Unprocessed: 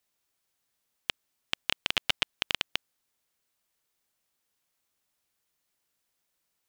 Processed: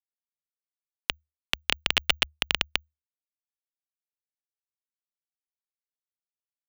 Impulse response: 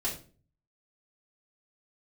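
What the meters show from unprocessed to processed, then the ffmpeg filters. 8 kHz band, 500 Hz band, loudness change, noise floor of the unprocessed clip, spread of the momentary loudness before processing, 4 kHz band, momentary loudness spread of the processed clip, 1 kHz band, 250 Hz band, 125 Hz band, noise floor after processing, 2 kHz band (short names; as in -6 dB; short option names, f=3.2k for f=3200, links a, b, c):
+5.0 dB, +5.0 dB, +4.5 dB, -80 dBFS, 9 LU, +4.0 dB, 9 LU, +4.5 dB, +4.0 dB, +5.0 dB, under -85 dBFS, +5.0 dB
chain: -af "acrusher=bits=6:dc=4:mix=0:aa=0.000001,afreqshift=-76,volume=4.5dB"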